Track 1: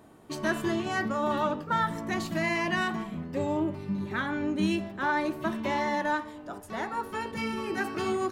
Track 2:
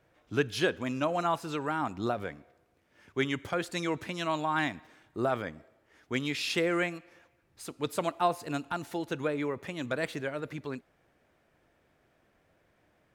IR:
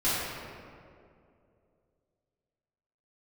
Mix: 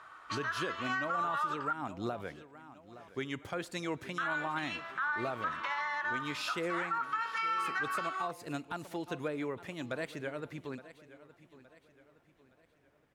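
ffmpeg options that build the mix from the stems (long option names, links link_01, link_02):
-filter_complex "[0:a]lowpass=5200,alimiter=level_in=3dB:limit=-24dB:level=0:latency=1:release=162,volume=-3dB,highpass=frequency=1300:width_type=q:width=5.6,volume=3dB,asplit=3[link_01][link_02][link_03];[link_01]atrim=end=1.73,asetpts=PTS-STARTPTS,afade=type=out:start_time=1.726:duration=0.004:curve=hsin[link_04];[link_02]atrim=start=1.73:end=4.18,asetpts=PTS-STARTPTS,volume=0[link_05];[link_03]atrim=start=4.18,asetpts=PTS-STARTPTS,afade=type=in:duration=0.004:curve=hsin[link_06];[link_04][link_05][link_06]concat=n=3:v=0:a=1[link_07];[1:a]volume=-4.5dB,asplit=2[link_08][link_09];[link_09]volume=-17.5dB,aecho=0:1:867|1734|2601|3468|4335|5202:1|0.41|0.168|0.0689|0.0283|0.0116[link_10];[link_07][link_08][link_10]amix=inputs=3:normalize=0,alimiter=level_in=1dB:limit=-24dB:level=0:latency=1:release=172,volume=-1dB"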